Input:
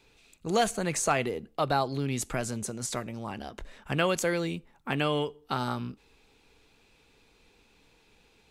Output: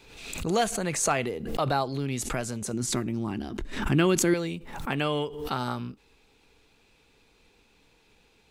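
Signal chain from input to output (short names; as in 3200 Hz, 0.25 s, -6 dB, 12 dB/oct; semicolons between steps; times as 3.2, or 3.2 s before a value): 2.73–4.34 resonant low shelf 420 Hz +6 dB, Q 3; backwards sustainer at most 60 dB/s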